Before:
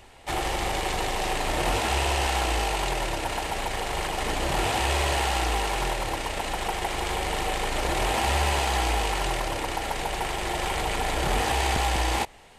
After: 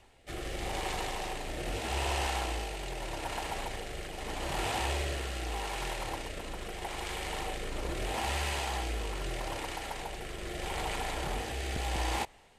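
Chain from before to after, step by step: rotary speaker horn 0.8 Hz; gain -6.5 dB

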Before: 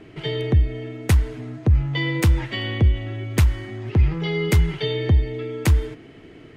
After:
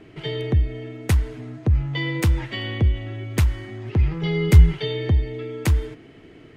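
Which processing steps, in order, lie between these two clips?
4.23–4.73 low shelf 160 Hz +10.5 dB; gain -2 dB

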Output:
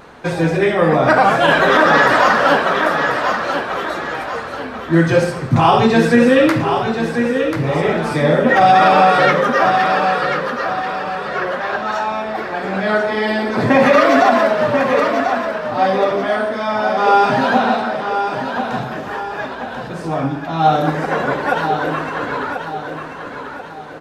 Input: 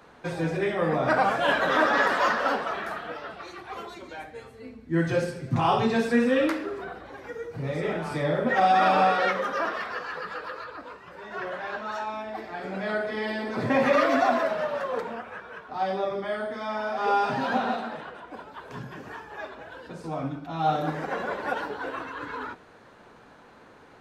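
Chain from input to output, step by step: vibrato 0.51 Hz 7.4 cents; on a send: feedback echo 1.038 s, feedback 42%, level -7.5 dB; on the sum: maximiser +12.5 dB; gain -1 dB

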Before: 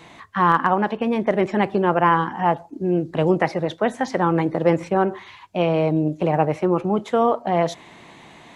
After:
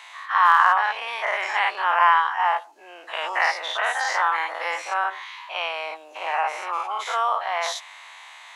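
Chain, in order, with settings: spectral dilation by 0.12 s; HPF 940 Hz 24 dB/oct

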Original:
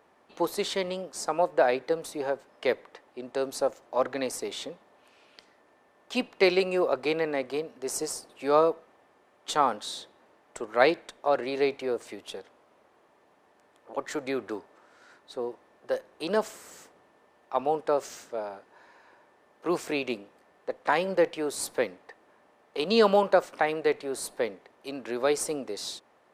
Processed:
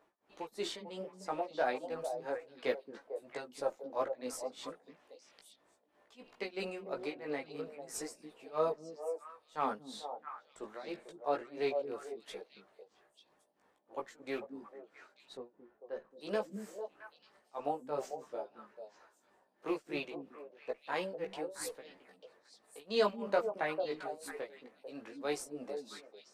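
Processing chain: rattling part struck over -35 dBFS, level -29 dBFS; tremolo 3 Hz, depth 96%; delay with a stepping band-pass 0.223 s, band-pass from 220 Hz, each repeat 1.4 oct, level -3 dB; chorus voices 6, 0.24 Hz, delay 17 ms, depth 3.4 ms; 15.37–16.11 tape spacing loss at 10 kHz 27 dB; gain -4.5 dB

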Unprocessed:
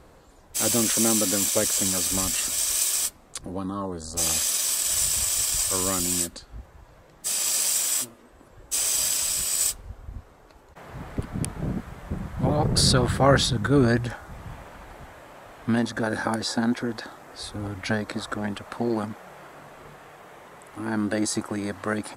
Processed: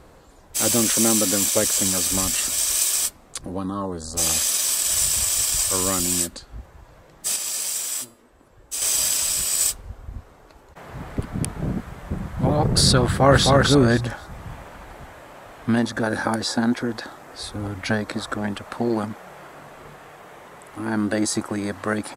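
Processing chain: 7.36–8.82 resonator 440 Hz, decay 0.41 s, mix 50%; 13.05–13.48 echo throw 0.26 s, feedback 20%, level -2 dB; gain +3 dB

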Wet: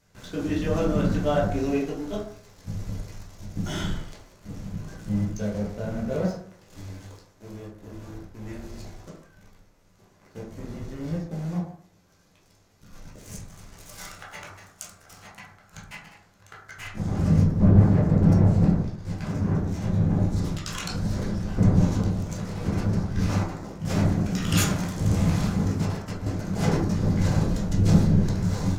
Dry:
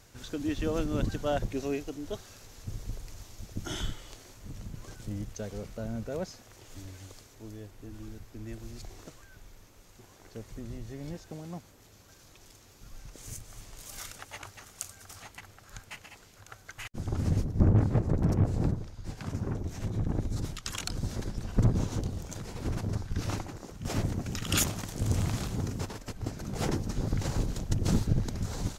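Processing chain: bell 180 Hz +6 dB 0.3 oct; sample leveller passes 2; reverb RT60 0.60 s, pre-delay 7 ms, DRR -6 dB; gain -8 dB

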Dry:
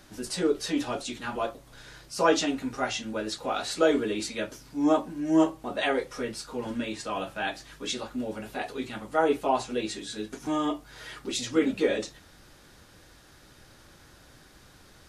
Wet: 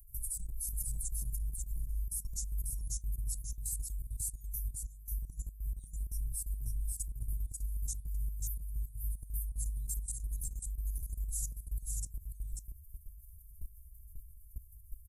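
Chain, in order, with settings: per-bin expansion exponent 1.5; inverse Chebyshev band-stop 260–3000 Hz, stop band 70 dB; tone controls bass +11 dB, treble +10 dB; level quantiser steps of 17 dB; on a send: echo 0.541 s -3.5 dB; on the sum: gain +14 dB

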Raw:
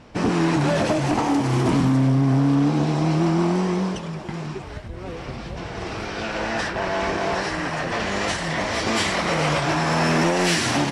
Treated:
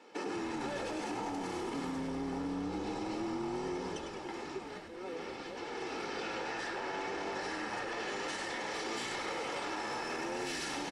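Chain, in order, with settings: steep high-pass 200 Hz 72 dB/oct; comb 2.3 ms, depth 70%; limiter -17 dBFS, peak gain reduction 9 dB; compressor 2.5:1, threshold -28 dBFS, peak gain reduction 5 dB; on a send: frequency-shifting echo 0.102 s, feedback 49%, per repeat -98 Hz, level -8.5 dB; on the sum: gain -9 dB

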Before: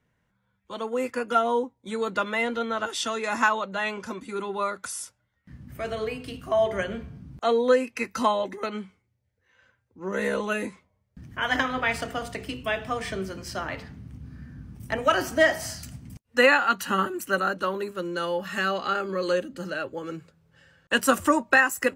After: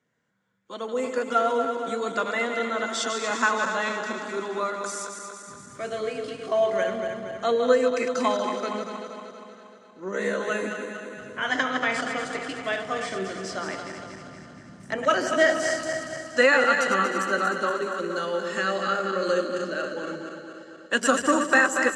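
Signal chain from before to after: regenerating reverse delay 0.118 s, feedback 76%, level -6.5 dB; speaker cabinet 210–8300 Hz, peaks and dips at 890 Hz -5 dB, 2600 Hz -5 dB, 7200 Hz +5 dB; echo with dull and thin repeats by turns 0.152 s, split 1100 Hz, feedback 71%, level -12.5 dB

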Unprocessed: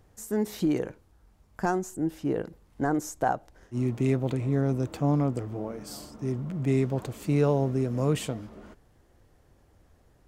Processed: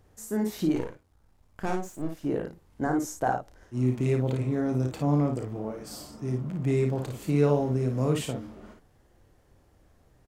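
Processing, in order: 0.75–2.25 half-wave gain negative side -12 dB; early reflections 32 ms -9 dB, 55 ms -5.5 dB; gain -1.5 dB

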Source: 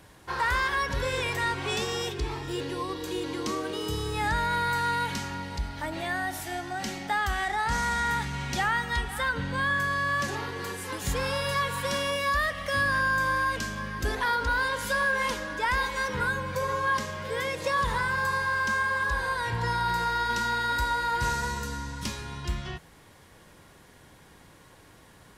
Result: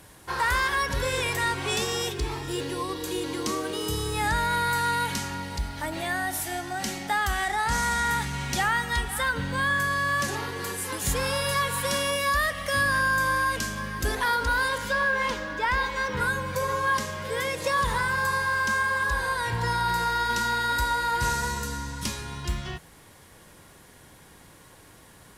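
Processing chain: bell 11000 Hz +8.5 dB 1.2 oct, from 14.78 s -8 dB, from 16.17 s +6.5 dB; companded quantiser 8-bit; gain +1.5 dB

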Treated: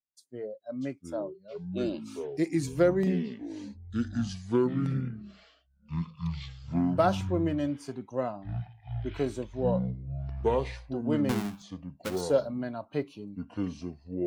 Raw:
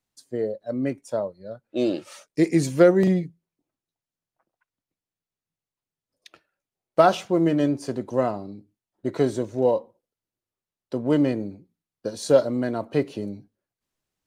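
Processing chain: 11.29–12.21 half-waves squared off; spectral noise reduction 15 dB; echoes that change speed 0.571 s, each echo -6 st, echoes 3; gain -8 dB

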